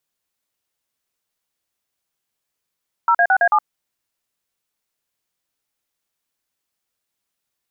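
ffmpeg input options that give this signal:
-f lavfi -i "aevalsrc='0.2*clip(min(mod(t,0.11),0.067-mod(t,0.11))/0.002,0,1)*(eq(floor(t/0.11),0)*(sin(2*PI*941*mod(t,0.11))+sin(2*PI*1336*mod(t,0.11)))+eq(floor(t/0.11),1)*(sin(2*PI*697*mod(t,0.11))+sin(2*PI*1633*mod(t,0.11)))+eq(floor(t/0.11),2)*(sin(2*PI*770*mod(t,0.11))+sin(2*PI*1477*mod(t,0.11)))+eq(floor(t/0.11),3)*(sin(2*PI*697*mod(t,0.11))+sin(2*PI*1633*mod(t,0.11)))+eq(floor(t/0.11),4)*(sin(2*PI*852*mod(t,0.11))+sin(2*PI*1209*mod(t,0.11))))':d=0.55:s=44100"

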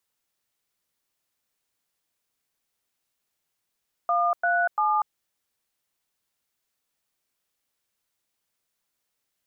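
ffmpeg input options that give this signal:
-f lavfi -i "aevalsrc='0.075*clip(min(mod(t,0.344),0.241-mod(t,0.344))/0.002,0,1)*(eq(floor(t/0.344),0)*(sin(2*PI*697*mod(t,0.344))+sin(2*PI*1209*mod(t,0.344)))+eq(floor(t/0.344),1)*(sin(2*PI*697*mod(t,0.344))+sin(2*PI*1477*mod(t,0.344)))+eq(floor(t/0.344),2)*(sin(2*PI*852*mod(t,0.344))+sin(2*PI*1209*mod(t,0.344))))':d=1.032:s=44100"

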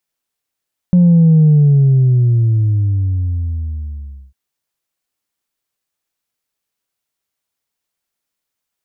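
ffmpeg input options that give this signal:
-f lavfi -i "aevalsrc='0.501*clip((3.4-t)/2.9,0,1)*tanh(1.06*sin(2*PI*180*3.4/log(65/180)*(exp(log(65/180)*t/3.4)-1)))/tanh(1.06)':d=3.4:s=44100"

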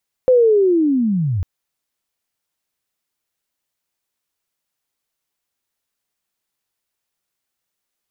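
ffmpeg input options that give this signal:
-f lavfi -i "aevalsrc='pow(10,(-8-9*t/1.15)/20)*sin(2*PI*(520*t-439*t*t/(2*1.15)))':d=1.15:s=44100"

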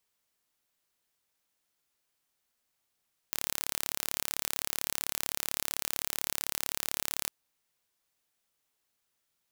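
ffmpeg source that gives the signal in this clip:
-f lavfi -i "aevalsrc='0.596*eq(mod(n,1235),0)':d=3.96:s=44100"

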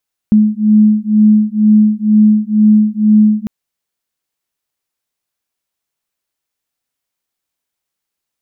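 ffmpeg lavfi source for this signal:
-f lavfi -i "aevalsrc='0.335*(sin(2*PI*212*t)+sin(2*PI*214.1*t))':d=3.15:s=44100"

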